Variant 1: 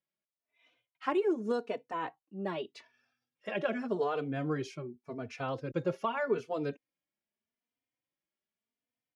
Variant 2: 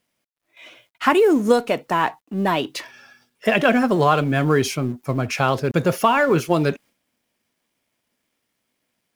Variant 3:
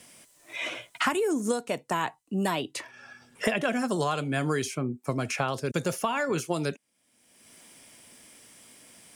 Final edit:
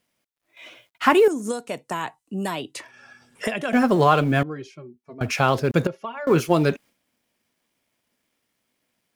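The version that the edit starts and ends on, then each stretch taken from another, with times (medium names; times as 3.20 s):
2
1.28–3.73 s: from 3
4.43–5.21 s: from 1
5.87–6.27 s: from 1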